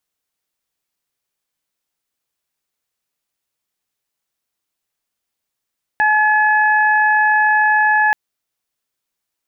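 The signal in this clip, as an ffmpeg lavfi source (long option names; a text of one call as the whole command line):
ffmpeg -f lavfi -i "aevalsrc='0.188*sin(2*PI*853*t)+0.224*sin(2*PI*1706*t)+0.0237*sin(2*PI*2559*t)':duration=2.13:sample_rate=44100" out.wav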